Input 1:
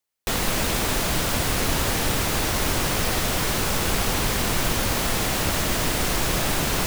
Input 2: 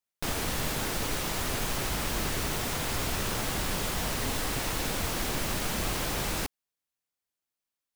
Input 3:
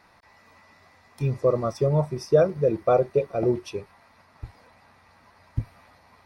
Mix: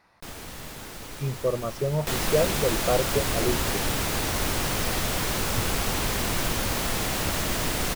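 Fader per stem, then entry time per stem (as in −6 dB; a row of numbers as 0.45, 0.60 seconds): −3.5, −8.5, −4.5 decibels; 1.80, 0.00, 0.00 seconds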